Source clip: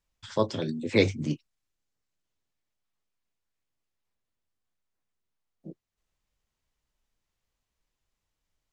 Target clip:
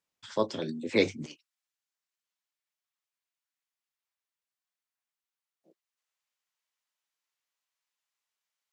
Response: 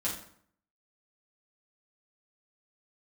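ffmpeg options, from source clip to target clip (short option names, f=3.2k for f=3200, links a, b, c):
-af "asetnsamples=n=441:p=0,asendcmd='1.26 highpass f 980',highpass=190,volume=-2dB"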